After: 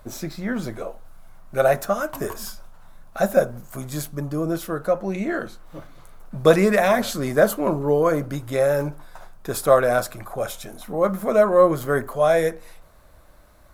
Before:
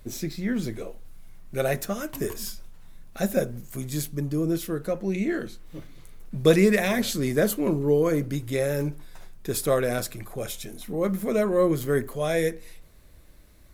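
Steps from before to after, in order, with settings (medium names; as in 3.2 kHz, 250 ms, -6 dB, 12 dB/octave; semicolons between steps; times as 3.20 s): high-order bell 920 Hz +11 dB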